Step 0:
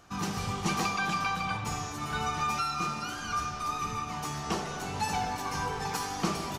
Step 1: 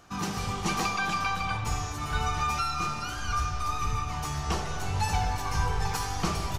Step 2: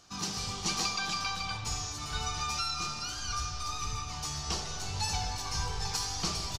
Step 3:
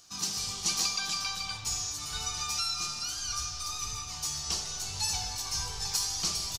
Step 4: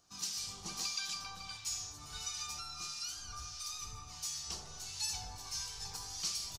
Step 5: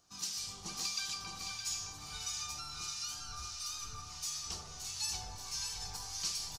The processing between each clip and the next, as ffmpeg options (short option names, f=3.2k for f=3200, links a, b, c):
-af "asubboost=boost=11:cutoff=71,volume=1.5dB"
-af "firequalizer=gain_entry='entry(1800,0);entry(4600,14);entry(12000,1)':delay=0.05:min_phase=1,volume=-7.5dB"
-af "crystalizer=i=3.5:c=0,volume=-6dB"
-filter_complex "[0:a]acrossover=split=1400[a][b];[a]aeval=exprs='val(0)*(1-0.7/2+0.7/2*cos(2*PI*1.5*n/s))':c=same[c];[b]aeval=exprs='val(0)*(1-0.7/2-0.7/2*cos(2*PI*1.5*n/s))':c=same[d];[c][d]amix=inputs=2:normalize=0,volume=-5.5dB"
-af "aecho=1:1:615|1230|1845|2460:0.501|0.17|0.0579|0.0197"